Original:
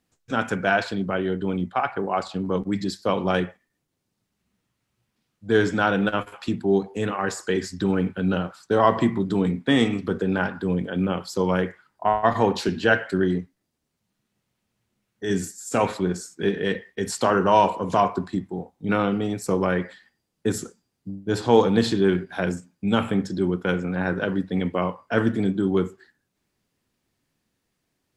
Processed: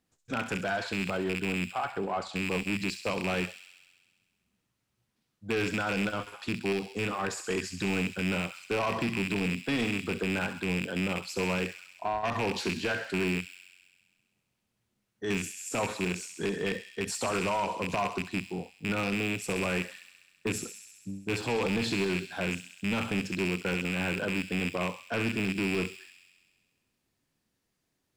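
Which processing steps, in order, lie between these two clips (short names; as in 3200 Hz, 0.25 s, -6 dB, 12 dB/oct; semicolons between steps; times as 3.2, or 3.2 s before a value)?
rattling part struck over -27 dBFS, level -11 dBFS; limiter -12.5 dBFS, peak gain reduction 9.5 dB; soft clip -19 dBFS, distortion -14 dB; thin delay 66 ms, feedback 74%, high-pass 3600 Hz, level -6.5 dB; gain -4 dB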